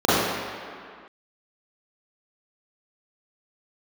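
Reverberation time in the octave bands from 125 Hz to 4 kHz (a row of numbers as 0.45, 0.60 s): 1.6 s, 2.0 s, 2.0 s, 2.3 s, n/a, 1.6 s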